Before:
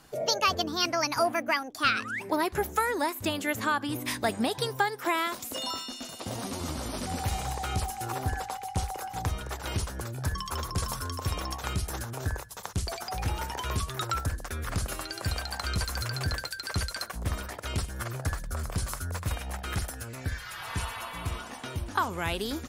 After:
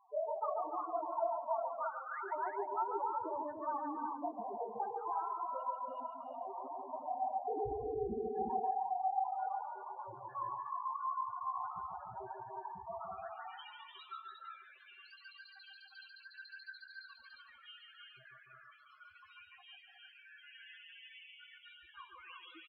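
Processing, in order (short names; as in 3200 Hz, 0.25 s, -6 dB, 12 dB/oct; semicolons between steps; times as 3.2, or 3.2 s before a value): HPF 58 Hz 24 dB/oct; notch 820 Hz, Q 19; compressor 20:1, threshold -32 dBFS, peak gain reduction 13.5 dB; band-pass sweep 900 Hz -> 2900 Hz, 12.83–13.68; chorus 2.7 Hz, delay 15 ms, depth 5.9 ms; resonator 390 Hz, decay 0.75 s, mix 50%; 7.48–8.34 sample-rate reducer 1200 Hz, jitter 0%; loudest bins only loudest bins 4; tape spacing loss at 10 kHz 44 dB; on a send: tapped delay 0.142/0.294/0.357/0.459 s -5/-6.5/-4/-14.5 dB; on the sum: two-slope reverb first 0.21 s, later 3.3 s, from -18 dB, DRR 19.5 dB; gain +18 dB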